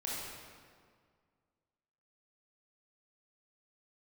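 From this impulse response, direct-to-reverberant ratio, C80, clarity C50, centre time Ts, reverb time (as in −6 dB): −6.5 dB, 0.0 dB, −3.0 dB, 123 ms, 1.9 s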